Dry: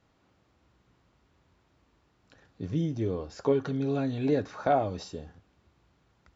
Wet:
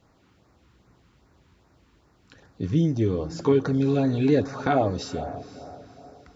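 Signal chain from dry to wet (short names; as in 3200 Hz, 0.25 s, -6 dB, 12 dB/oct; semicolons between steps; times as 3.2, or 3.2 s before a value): diffused feedback echo 0.504 s, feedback 40%, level -15.5 dB; LFO notch sine 2.5 Hz 570–3300 Hz; gain +7.5 dB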